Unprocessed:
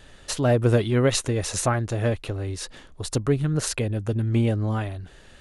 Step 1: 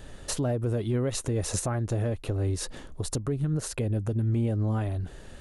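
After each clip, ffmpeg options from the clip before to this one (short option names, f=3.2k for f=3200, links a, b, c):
-filter_complex "[0:a]equalizer=f=2.8k:t=o:w=3:g=-8.5,asplit=2[a][b];[b]acompressor=threshold=-29dB:ratio=6,volume=0dB[c];[a][c]amix=inputs=2:normalize=0,alimiter=limit=-19.5dB:level=0:latency=1:release=278"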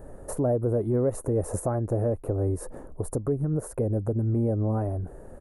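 -af "firequalizer=gain_entry='entry(150,0);entry(510,7);entry(3200,-29);entry(10000,-1)':delay=0.05:min_phase=1"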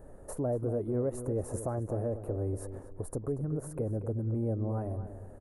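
-filter_complex "[0:a]asplit=2[a][b];[b]adelay=236,lowpass=f=2.8k:p=1,volume=-10.5dB,asplit=2[c][d];[d]adelay=236,lowpass=f=2.8k:p=1,volume=0.3,asplit=2[e][f];[f]adelay=236,lowpass=f=2.8k:p=1,volume=0.3[g];[a][c][e][g]amix=inputs=4:normalize=0,volume=-7dB"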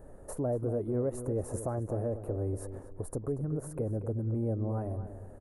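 -af anull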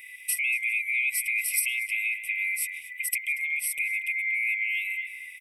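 -filter_complex "[0:a]afftfilt=real='real(if(lt(b,920),b+92*(1-2*mod(floor(b/92),2)),b),0)':imag='imag(if(lt(b,920),b+92*(1-2*mod(floor(b/92),2)),b),0)':win_size=2048:overlap=0.75,acrossover=split=140|470|3600[a][b][c][d];[d]crystalizer=i=5:c=0[e];[a][b][c][e]amix=inputs=4:normalize=0,volume=3dB"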